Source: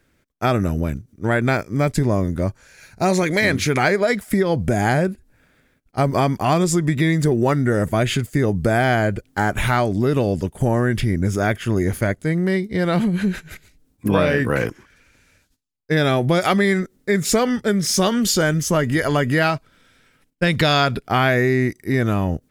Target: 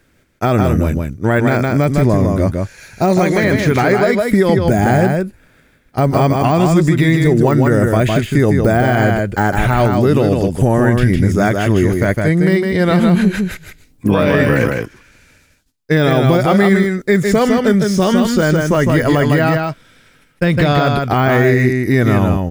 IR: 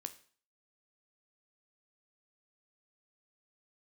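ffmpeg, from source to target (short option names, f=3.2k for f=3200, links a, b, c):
-af "deesser=0.75,aecho=1:1:157:0.596,alimiter=level_in=7.5dB:limit=-1dB:release=50:level=0:latency=1,volume=-1dB"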